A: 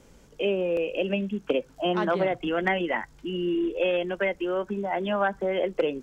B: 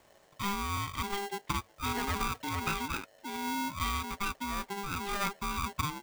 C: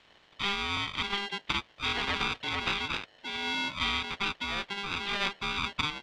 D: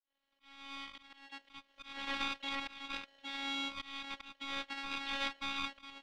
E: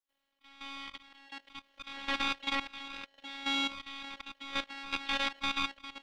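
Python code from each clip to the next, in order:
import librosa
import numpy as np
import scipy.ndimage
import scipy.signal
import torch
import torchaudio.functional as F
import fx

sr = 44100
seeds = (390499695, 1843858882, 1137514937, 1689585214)

y1 = x * np.sign(np.sin(2.0 * np.pi * 600.0 * np.arange(len(x)) / sr))
y1 = y1 * 10.0 ** (-8.0 / 20.0)
y2 = fx.spec_clip(y1, sr, under_db=13)
y2 = fx.lowpass_res(y2, sr, hz=3400.0, q=2.1)
y3 = fx.fade_in_head(y2, sr, length_s=1.88)
y3 = fx.auto_swell(y3, sr, attack_ms=333.0)
y3 = fx.robotise(y3, sr, hz=275.0)
y3 = y3 * 10.0 ** (-4.0 / 20.0)
y4 = fx.level_steps(y3, sr, step_db=13)
y4 = y4 * 10.0 ** (8.0 / 20.0)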